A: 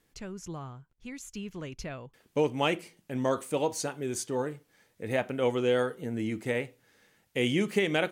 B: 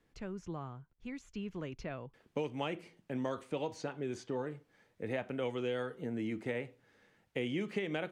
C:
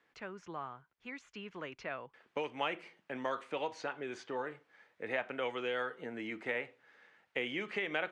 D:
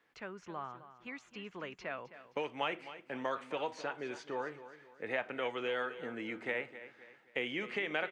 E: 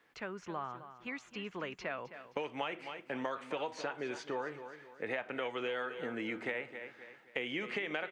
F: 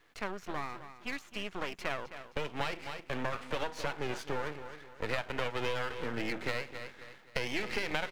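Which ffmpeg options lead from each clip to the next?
ffmpeg -i in.wav -filter_complex "[0:a]acrossover=split=180|1900|5800[link_01][link_02][link_03][link_04];[link_01]acompressor=threshold=-47dB:ratio=4[link_05];[link_02]acompressor=threshold=-34dB:ratio=4[link_06];[link_03]acompressor=threshold=-39dB:ratio=4[link_07];[link_04]acompressor=threshold=-57dB:ratio=4[link_08];[link_05][link_06][link_07][link_08]amix=inputs=4:normalize=0,aemphasis=mode=reproduction:type=75kf,volume=-1dB" out.wav
ffmpeg -i in.wav -af "bandpass=frequency=1600:width_type=q:width=0.78:csg=0,volume=7dB" out.wav
ffmpeg -i in.wav -af "aecho=1:1:262|524|786|1048:0.2|0.0758|0.0288|0.0109" out.wav
ffmpeg -i in.wav -af "acompressor=threshold=-38dB:ratio=4,volume=4dB" out.wav
ffmpeg -i in.wav -af "aeval=exprs='max(val(0),0)':channel_layout=same,volume=7dB" out.wav

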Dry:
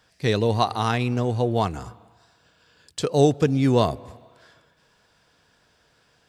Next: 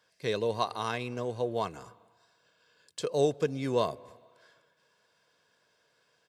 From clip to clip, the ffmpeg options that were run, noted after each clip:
ffmpeg -i in.wav -af "highpass=190,aecho=1:1:1.9:0.39,volume=-8.5dB" out.wav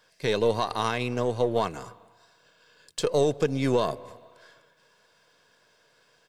ffmpeg -i in.wav -af "aeval=exprs='if(lt(val(0),0),0.708*val(0),val(0))':channel_layout=same,alimiter=limit=-21dB:level=0:latency=1:release=81,volume=8.5dB" out.wav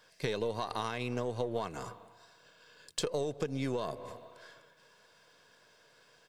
ffmpeg -i in.wav -af "acompressor=threshold=-30dB:ratio=10" out.wav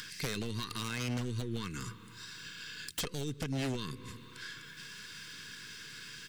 ffmpeg -i in.wav -af "acompressor=mode=upward:threshold=-38dB:ratio=2.5,asuperstop=centerf=670:order=4:qfactor=0.52,aeval=exprs='0.02*(abs(mod(val(0)/0.02+3,4)-2)-1)':channel_layout=same,volume=6dB" out.wav

